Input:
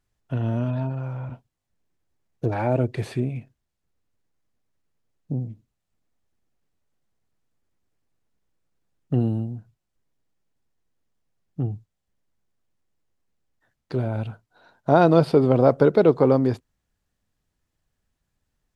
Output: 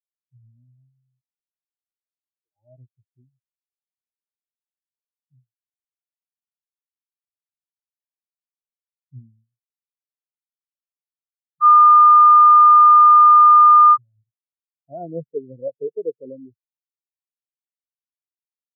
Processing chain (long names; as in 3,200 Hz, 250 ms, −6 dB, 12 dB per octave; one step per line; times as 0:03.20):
0:01.21–0:02.56: high-pass filter 780 Hz 6 dB per octave
0:11.61–0:13.97: beep over 1,210 Hz −11.5 dBFS
every bin expanded away from the loudest bin 4 to 1
level −3 dB